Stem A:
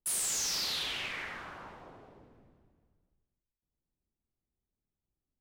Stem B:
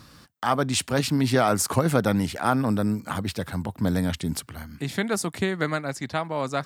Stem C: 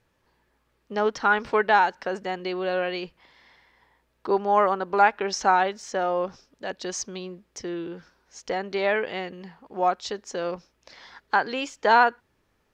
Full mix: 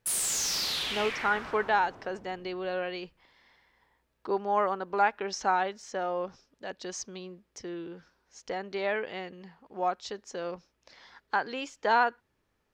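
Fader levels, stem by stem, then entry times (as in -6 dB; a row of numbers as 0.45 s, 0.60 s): +3.0 dB, mute, -6.5 dB; 0.00 s, mute, 0.00 s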